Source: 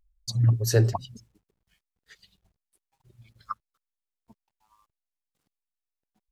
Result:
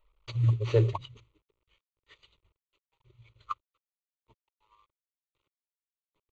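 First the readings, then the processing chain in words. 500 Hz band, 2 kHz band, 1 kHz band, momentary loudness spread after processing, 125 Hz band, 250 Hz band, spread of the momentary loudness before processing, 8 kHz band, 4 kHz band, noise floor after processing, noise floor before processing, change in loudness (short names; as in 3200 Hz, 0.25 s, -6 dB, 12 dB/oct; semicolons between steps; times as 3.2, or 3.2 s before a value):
-1.0 dB, -7.5 dB, -2.5 dB, 15 LU, -4.0 dB, -5.0 dB, 18 LU, under -20 dB, -9.0 dB, under -85 dBFS, under -85 dBFS, -4.0 dB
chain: CVSD 32 kbps; fixed phaser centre 1100 Hz, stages 8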